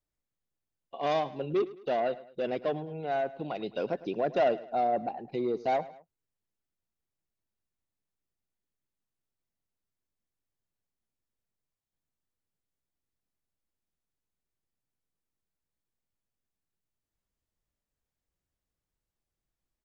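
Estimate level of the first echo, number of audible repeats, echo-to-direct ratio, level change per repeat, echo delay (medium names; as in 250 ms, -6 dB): -18.0 dB, 2, -17.0 dB, -7.0 dB, 106 ms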